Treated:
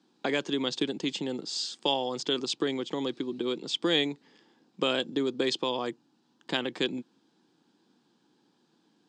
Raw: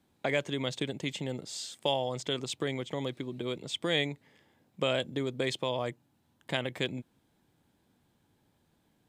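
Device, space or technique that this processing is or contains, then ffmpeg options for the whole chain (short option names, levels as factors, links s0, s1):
television speaker: -af "highpass=f=190:w=0.5412,highpass=f=190:w=1.3066,equalizer=f=330:t=q:w=4:g=4,equalizer=f=610:t=q:w=4:g=-10,equalizer=f=2100:t=q:w=4:g=-9,equalizer=f=4800:t=q:w=4:g=6,lowpass=f=7000:w=0.5412,lowpass=f=7000:w=1.3066,volume=1.68"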